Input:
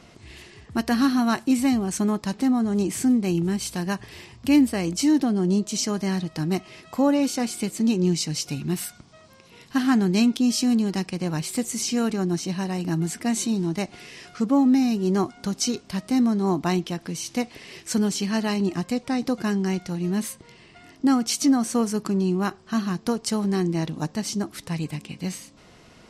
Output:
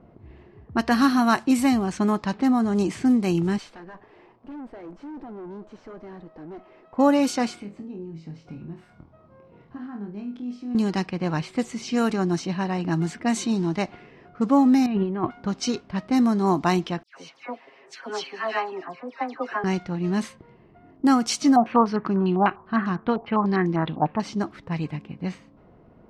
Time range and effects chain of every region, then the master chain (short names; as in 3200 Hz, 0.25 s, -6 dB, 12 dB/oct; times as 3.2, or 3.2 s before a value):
3.58–6.97 G.711 law mismatch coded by mu + HPF 390 Hz + tube stage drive 35 dB, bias 0.6
7.59–10.75 compressor 5:1, threshold -35 dBFS + flutter echo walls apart 4.2 m, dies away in 0.29 s
14.86–15.31 steep low-pass 3300 Hz + low shelf 87 Hz +6.5 dB + negative-ratio compressor -24 dBFS, ratio -0.5
17.03–19.64 HPF 620 Hz + comb 7.4 ms, depth 71% + dispersion lows, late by 0.119 s, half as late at 2000 Hz
21.56–24.2 air absorption 260 m + careless resampling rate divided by 3×, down filtered, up hold + stepped low-pass 10 Hz 760–6500 Hz
whole clip: low-pass opened by the level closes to 740 Hz, open at -17.5 dBFS; dynamic EQ 1100 Hz, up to +6 dB, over -39 dBFS, Q 0.73